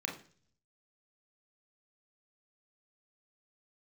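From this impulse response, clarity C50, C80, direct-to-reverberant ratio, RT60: 9.0 dB, 14.0 dB, 0.5 dB, 0.45 s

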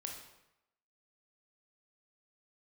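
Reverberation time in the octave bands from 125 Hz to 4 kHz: 0.85, 0.80, 0.85, 0.90, 0.80, 0.70 seconds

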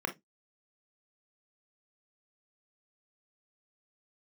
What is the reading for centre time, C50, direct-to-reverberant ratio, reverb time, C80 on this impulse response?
9 ms, 15.0 dB, 5.5 dB, non-exponential decay, 30.0 dB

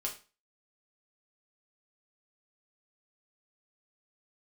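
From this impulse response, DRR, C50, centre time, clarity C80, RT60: −1.5 dB, 10.5 dB, 17 ms, 16.0 dB, 0.35 s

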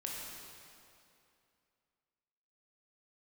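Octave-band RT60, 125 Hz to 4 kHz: 2.6, 2.7, 2.7, 2.6, 2.4, 2.2 seconds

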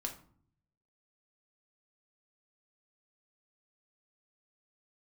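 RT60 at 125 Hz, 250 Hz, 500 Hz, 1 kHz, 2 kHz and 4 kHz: 1.0, 0.85, 0.55, 0.50, 0.35, 0.30 seconds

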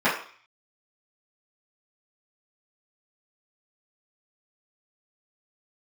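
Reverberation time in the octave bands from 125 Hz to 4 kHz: 0.35, 0.40, 0.40, 0.50, 0.55, 0.55 seconds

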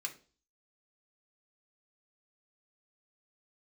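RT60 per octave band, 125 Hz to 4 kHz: 0.45, 0.50, 0.45, 0.35, 0.30, 0.40 seconds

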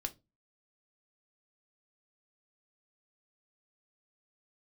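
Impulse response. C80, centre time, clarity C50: 30.0 dB, 5 ms, 20.5 dB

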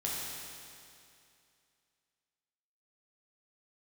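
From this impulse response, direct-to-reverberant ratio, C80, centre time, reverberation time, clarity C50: −5.5 dB, −0.5 dB, 148 ms, 2.5 s, −2.0 dB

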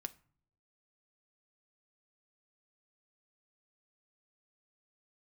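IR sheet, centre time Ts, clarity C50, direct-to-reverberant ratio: 4 ms, 20.0 dB, 8.0 dB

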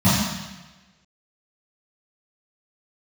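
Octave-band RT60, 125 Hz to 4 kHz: 1.2, 1.0, 1.2, 1.1, 1.3, 1.2 seconds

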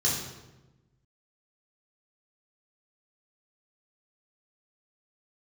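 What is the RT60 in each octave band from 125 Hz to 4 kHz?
1.7, 1.4, 1.2, 1.0, 0.85, 0.75 seconds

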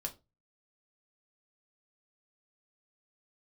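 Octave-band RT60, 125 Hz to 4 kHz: 0.45, 0.30, 0.30, 0.25, 0.20, 0.20 seconds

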